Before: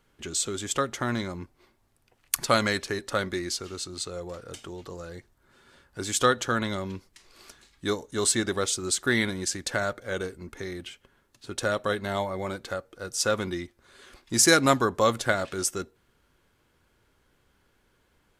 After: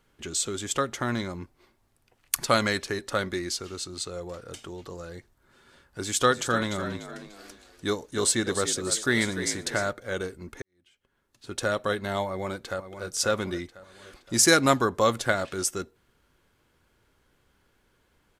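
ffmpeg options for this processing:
ffmpeg -i in.wav -filter_complex "[0:a]asettb=1/sr,asplit=3[link_01][link_02][link_03];[link_01]atrim=end=6.004[link_04];[link_02]atrim=start=6:end=9.91,asetpts=PTS-STARTPTS,afade=type=in:duration=0.004:curve=qsin,afade=type=out:start_time=3.906:duration=0.004:curve=qsin,asplit=5[link_05][link_06][link_07][link_08][link_09];[link_06]adelay=295,afreqshift=54,volume=-10.5dB[link_10];[link_07]adelay=590,afreqshift=108,volume=-19.4dB[link_11];[link_08]adelay=885,afreqshift=162,volume=-28.2dB[link_12];[link_09]adelay=1180,afreqshift=216,volume=-37.1dB[link_13];[link_05][link_10][link_11][link_12][link_13]amix=inputs=5:normalize=0,atrim=end_sample=172431[link_14];[link_03]atrim=start=9.906[link_15];[link_04][link_14]acrossfade=duration=0.004:curve1=hsin:curve2=qsin[link_16];[link_16][link_15]acrossfade=duration=0.004:curve1=qsin:curve2=hsin,asplit=2[link_17][link_18];[link_18]afade=type=in:start_time=12.26:duration=0.01,afade=type=out:start_time=13.06:duration=0.01,aecho=0:1:520|1040|1560|2080|2600:0.298538|0.149269|0.0746346|0.0373173|0.0186586[link_19];[link_17][link_19]amix=inputs=2:normalize=0,asplit=2[link_20][link_21];[link_20]atrim=end=10.62,asetpts=PTS-STARTPTS,afade=type=out:start_time=10.616:duration=0.004:curve=hsin[link_22];[link_21]atrim=start=10.62,asetpts=PTS-STARTPTS,afade=type=in:duration=0.9:curve=qua[link_23];[link_22][link_23]concat=n=2:v=0:a=1" out.wav

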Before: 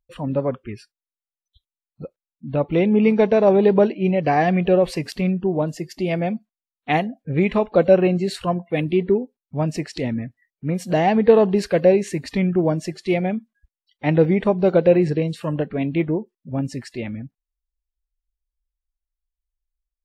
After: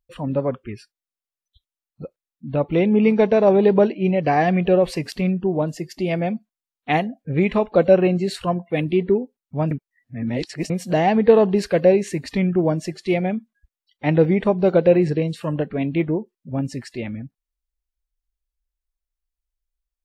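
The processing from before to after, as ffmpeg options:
ffmpeg -i in.wav -filter_complex "[0:a]asplit=3[link_01][link_02][link_03];[link_01]atrim=end=9.712[link_04];[link_02]atrim=start=9.708:end=10.702,asetpts=PTS-STARTPTS,areverse[link_05];[link_03]atrim=start=10.698[link_06];[link_04][link_05]acrossfade=duration=0.004:curve1=hsin:curve2=hsin[link_07];[link_07][link_06]acrossfade=duration=0.004:curve1=hsin:curve2=hsin" out.wav

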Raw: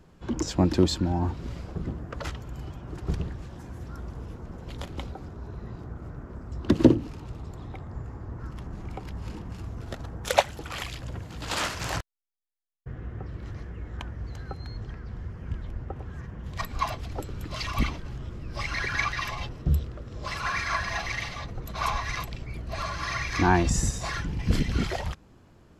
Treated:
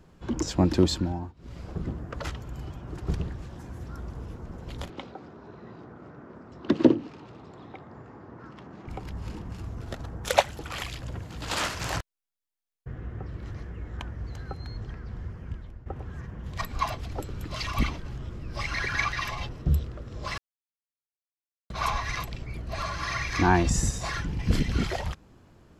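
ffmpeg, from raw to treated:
ffmpeg -i in.wav -filter_complex "[0:a]asettb=1/sr,asplit=3[link_01][link_02][link_03];[link_01]atrim=end=4.904[link_04];[link_02]atrim=start=4.9:end=8.88,asetpts=PTS-STARTPTS,afade=type=in:duration=0.004:curve=qsin,afade=type=out:start_time=3.976:duration=0.004:curve=qsin,highpass=210,lowpass=4500[link_05];[link_03]atrim=start=8.876[link_06];[link_04][link_05]acrossfade=duration=0.004:curve1=hsin:curve2=qsin[link_07];[link_07][link_06]acrossfade=duration=0.004:curve1=qsin:curve2=hsin,asplit=6[link_08][link_09][link_10][link_11][link_12][link_13];[link_08]atrim=end=1.33,asetpts=PTS-STARTPTS,afade=type=out:start_time=0.97:duration=0.36:silence=0.0707946[link_14];[link_09]atrim=start=1.33:end=1.35,asetpts=PTS-STARTPTS,volume=-23dB[link_15];[link_10]atrim=start=1.35:end=15.86,asetpts=PTS-STARTPTS,afade=type=in:duration=0.36:silence=0.0707946,afade=type=out:start_time=13.94:duration=0.57:silence=0.223872[link_16];[link_11]atrim=start=15.86:end=20.38,asetpts=PTS-STARTPTS,afade=type=in:duration=0.004:curve=hsin:silence=0.223872,afade=type=out:start_time=4.516:duration=0.004:curve=hsin[link_17];[link_12]atrim=start=20.38:end=21.7,asetpts=PTS-STARTPTS,volume=0[link_18];[link_13]atrim=start=21.7,asetpts=PTS-STARTPTS,afade=type=in:duration=0.004:curve=hsin[link_19];[link_14][link_15][link_16][link_17][link_18][link_19]concat=n=6:v=0:a=1" out.wav

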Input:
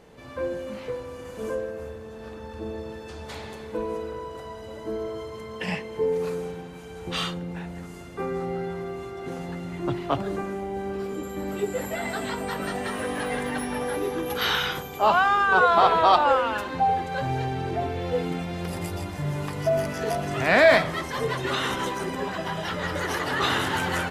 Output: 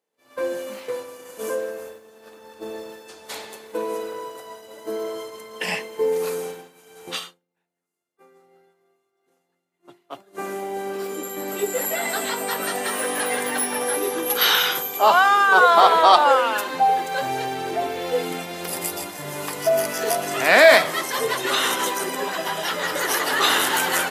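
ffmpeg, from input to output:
ffmpeg -i in.wav -filter_complex "[0:a]asettb=1/sr,asplit=3[link_01][link_02][link_03];[link_01]atrim=end=15.044[link_04];[link_02]atrim=start=15.04:end=16.39,asetpts=PTS-STARTPTS,afade=type=in:duration=0.004:curve=qsin,afade=type=out:start_time=1.346:duration=0.004:curve=qsin,bandreject=frequency=2600:width=12[link_05];[link_03]atrim=start=16.386[link_06];[link_04][link_05]acrossfade=duration=0.004:curve1=hsin:curve2=qsin[link_07];[link_07][link_06]acrossfade=duration=0.004:curve1=qsin:curve2=hsin,asplit=3[link_08][link_09][link_10];[link_08]atrim=end=7.2,asetpts=PTS-STARTPTS,afade=type=out:start_time=7.05:duration=0.15:curve=qsin:silence=0.223872[link_11];[link_09]atrim=start=7.2:end=10.32,asetpts=PTS-STARTPTS,volume=-13dB[link_12];[link_10]atrim=start=10.32,asetpts=PTS-STARTPTS,afade=type=in:duration=0.15:curve=qsin:silence=0.223872[link_13];[link_11][link_12][link_13]concat=n=3:v=0:a=1,highpass=330,aemphasis=mode=production:type=50fm,agate=range=-33dB:threshold=-34dB:ratio=3:detection=peak,volume=4.5dB" out.wav

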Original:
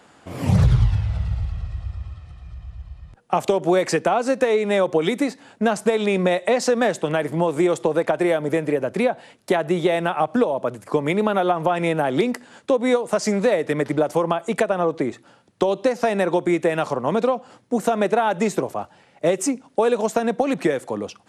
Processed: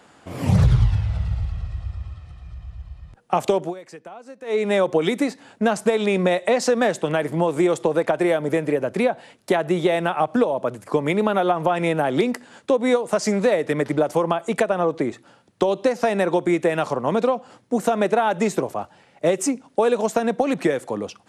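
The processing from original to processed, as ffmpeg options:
ffmpeg -i in.wav -filter_complex "[0:a]asplit=3[link_01][link_02][link_03];[link_01]atrim=end=3.74,asetpts=PTS-STARTPTS,afade=type=out:start_time=3.59:duration=0.15:silence=0.1[link_04];[link_02]atrim=start=3.74:end=4.44,asetpts=PTS-STARTPTS,volume=-20dB[link_05];[link_03]atrim=start=4.44,asetpts=PTS-STARTPTS,afade=type=in:duration=0.15:silence=0.1[link_06];[link_04][link_05][link_06]concat=n=3:v=0:a=1" out.wav

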